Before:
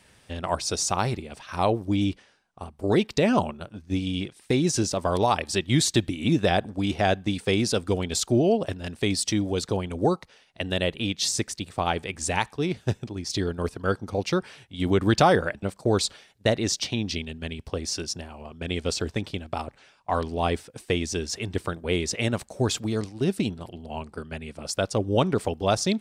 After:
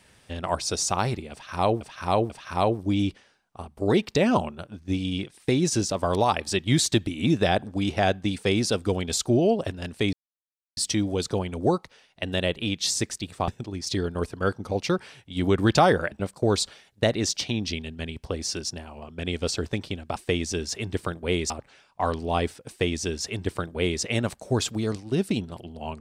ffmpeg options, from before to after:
ffmpeg -i in.wav -filter_complex "[0:a]asplit=7[link_01][link_02][link_03][link_04][link_05][link_06][link_07];[link_01]atrim=end=1.812[link_08];[link_02]atrim=start=1.318:end=1.812[link_09];[link_03]atrim=start=1.318:end=9.15,asetpts=PTS-STARTPTS,afade=type=out:start_time=7.828:duration=0.004:curve=hsin,apad=pad_dur=0.64[link_10];[link_04]atrim=start=9.15:end=11.862,asetpts=PTS-STARTPTS,afade=type=in:duration=0.004:curve=hsin[link_11];[link_05]atrim=start=12.908:end=19.592[link_12];[link_06]atrim=start=20.768:end=22.112[link_13];[link_07]atrim=start=19.588[link_14];[link_08][link_09]acrossfade=duration=0.004:curve1=hsin:curve2=hsin[link_15];[link_10][link_11]concat=n=2:v=0:a=1[link_16];[link_15][link_16]acrossfade=duration=0.004:curve1=hsin:curve2=hsin[link_17];[link_17][link_12]acrossfade=duration=0.004:curve1=hsin:curve2=hsin[link_18];[link_18][link_13]acrossfade=duration=0.004:curve1=hsin:curve2=hsin[link_19];[link_19][link_14]acrossfade=duration=0.004:curve1=hsin:curve2=hsin" out.wav

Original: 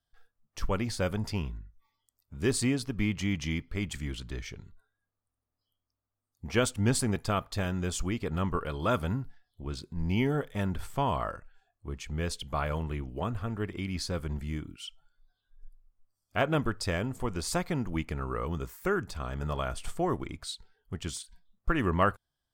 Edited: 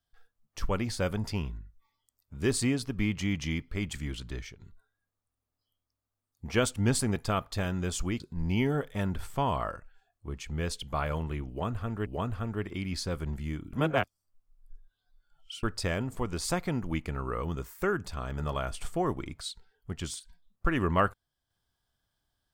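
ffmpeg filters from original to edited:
ffmpeg -i in.wav -filter_complex "[0:a]asplit=6[link_01][link_02][link_03][link_04][link_05][link_06];[link_01]atrim=end=4.6,asetpts=PTS-STARTPTS,afade=type=out:start_time=4.32:duration=0.28:curve=qsin:silence=0.16788[link_07];[link_02]atrim=start=4.6:end=8.202,asetpts=PTS-STARTPTS,afade=type=in:duration=0.004:curve=hsin:silence=0.16788[link_08];[link_03]atrim=start=9.798:end=13.662[link_09];[link_04]atrim=start=13.088:end=14.762[link_10];[link_05]atrim=start=14.758:end=16.662,asetpts=PTS-STARTPTS,areverse[link_11];[link_06]atrim=start=16.658[link_12];[link_07][link_08]concat=n=2:v=0:a=1[link_13];[link_13][link_09]acrossfade=duration=0.004:curve1=hsin:curve2=hsin[link_14];[link_14][link_10]acrossfade=duration=0.004:curve1=hsin:curve2=hsin[link_15];[link_15][link_11]acrossfade=duration=0.004:curve1=hsin:curve2=hsin[link_16];[link_16][link_12]acrossfade=duration=0.004:curve1=hsin:curve2=hsin" out.wav

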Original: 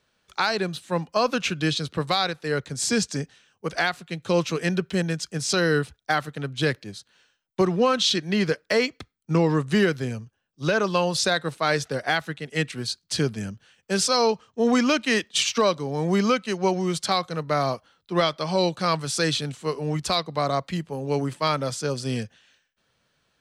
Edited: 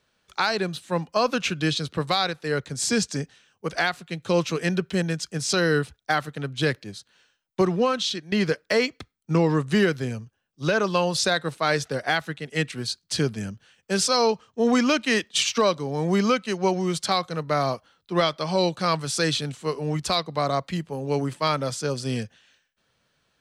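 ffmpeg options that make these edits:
ffmpeg -i in.wav -filter_complex "[0:a]asplit=2[link_01][link_02];[link_01]atrim=end=8.32,asetpts=PTS-STARTPTS,afade=type=out:start_time=7.71:duration=0.61:silence=0.251189[link_03];[link_02]atrim=start=8.32,asetpts=PTS-STARTPTS,afade=type=in:duration=0.004:curve=hsin:silence=0.251189[link_04];[link_03][link_04]concat=n=2:v=0:a=1" out.wav

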